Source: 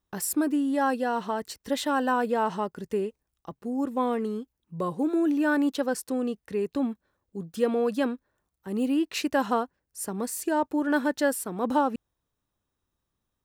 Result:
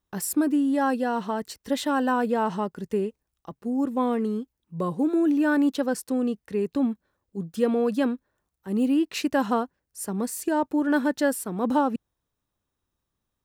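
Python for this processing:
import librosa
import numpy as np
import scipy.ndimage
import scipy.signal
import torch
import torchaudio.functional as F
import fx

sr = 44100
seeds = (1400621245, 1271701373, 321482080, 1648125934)

y = fx.dynamic_eq(x, sr, hz=190.0, q=0.94, threshold_db=-39.0, ratio=4.0, max_db=5)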